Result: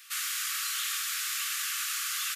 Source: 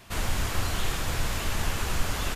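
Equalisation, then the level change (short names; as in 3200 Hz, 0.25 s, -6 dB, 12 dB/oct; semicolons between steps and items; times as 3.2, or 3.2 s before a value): brick-wall FIR high-pass 1100 Hz; tilt +3 dB/oct; -3.5 dB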